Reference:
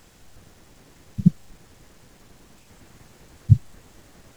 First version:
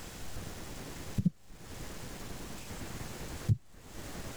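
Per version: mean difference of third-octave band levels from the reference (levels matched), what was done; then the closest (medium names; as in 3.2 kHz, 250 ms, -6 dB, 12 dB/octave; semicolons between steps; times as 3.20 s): 16.5 dB: compression 4:1, threshold -39 dBFS, peak gain reduction 26 dB; trim +8 dB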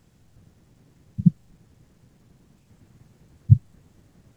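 7.5 dB: peaking EQ 130 Hz +14 dB 2.6 oct; trim -13 dB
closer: second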